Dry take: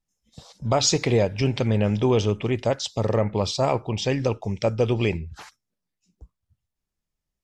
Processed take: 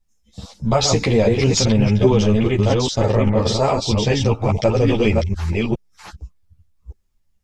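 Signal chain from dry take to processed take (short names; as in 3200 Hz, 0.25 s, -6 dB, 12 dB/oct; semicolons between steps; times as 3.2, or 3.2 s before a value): reverse delay 0.41 s, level -2 dB; low shelf 91 Hz +10.5 dB; limiter -12.5 dBFS, peak gain reduction 8 dB; ensemble effect; gain +8.5 dB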